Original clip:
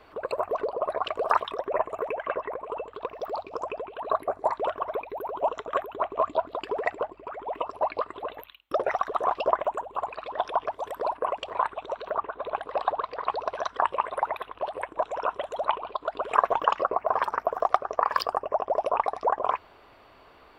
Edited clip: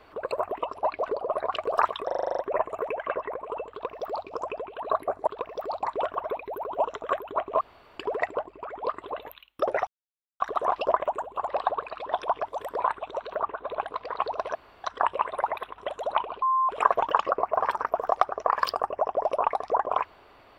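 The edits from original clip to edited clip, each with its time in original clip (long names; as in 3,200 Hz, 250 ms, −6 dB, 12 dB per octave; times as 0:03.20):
0:01.58: stutter 0.04 s, 9 plays
0:02.91–0:03.47: duplicate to 0:04.47
0:06.25–0:06.62: fill with room tone
0:07.50–0:07.98: move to 0:00.52
0:08.99: splice in silence 0.53 s
0:11.06–0:11.55: remove
0:12.70–0:13.03: move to 0:10.08
0:13.63: splice in room tone 0.29 s
0:14.57–0:15.31: remove
0:15.95–0:16.22: beep over 1,050 Hz −20 dBFS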